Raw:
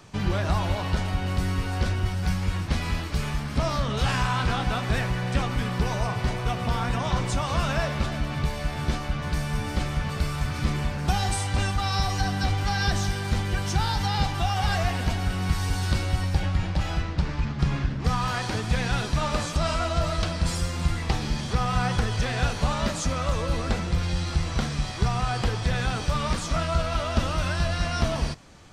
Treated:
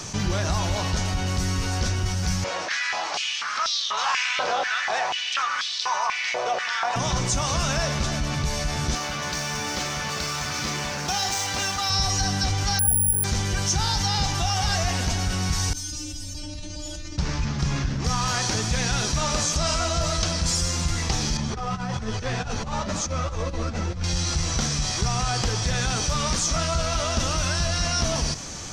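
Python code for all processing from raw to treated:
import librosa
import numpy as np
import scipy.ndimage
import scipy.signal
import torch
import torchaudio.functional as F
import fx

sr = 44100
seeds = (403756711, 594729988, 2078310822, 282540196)

y = fx.chain(x, sr, fx.air_absorb(metres=110.0),
    fx.filter_held_highpass(hz=4.1, low_hz=580.0, high_hz=3800.0), at=(2.44, 6.96))
y = fx.chain(y, sr, fx.median_filter(points=5),
    fx.highpass(hz=500.0, slope=6), at=(8.95, 11.9))
y = fx.chain(y, sr, fx.envelope_sharpen(power=1.5),
    fx.lowpass(hz=1000.0, slope=12),
    fx.resample_bad(factor=4, down='filtered', up='zero_stuff'), at=(12.79, 13.24))
y = fx.chain(y, sr, fx.peak_eq(hz=1200.0, db=-14.5, octaves=2.3),
    fx.comb_fb(f0_hz=300.0, decay_s=0.35, harmonics='all', damping=0.0, mix_pct=100),
    fx.env_flatten(amount_pct=70), at=(15.73, 17.18))
y = fx.chain(y, sr, fx.lowpass(hz=1600.0, slope=6),
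    fx.over_compress(threshold_db=-28.0, ratio=-0.5),
    fx.ensemble(), at=(21.37, 24.04))
y = fx.peak_eq(y, sr, hz=6100.0, db=15.0, octaves=0.78)
y = fx.env_flatten(y, sr, amount_pct=50)
y = F.gain(torch.from_numpy(y), -5.5).numpy()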